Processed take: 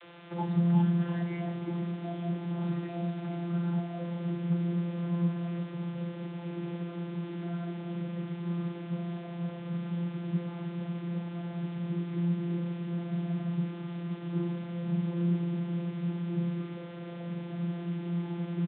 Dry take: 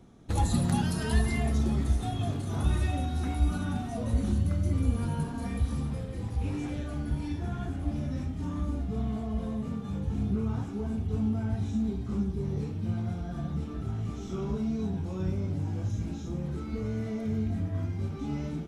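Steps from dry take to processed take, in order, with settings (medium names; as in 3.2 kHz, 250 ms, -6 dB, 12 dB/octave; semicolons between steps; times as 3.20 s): frequency-shifting echo 338 ms, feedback 55%, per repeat +60 Hz, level -14 dB; word length cut 6-bit, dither triangular; vocoder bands 32, saw 172 Hz; resampled via 8 kHz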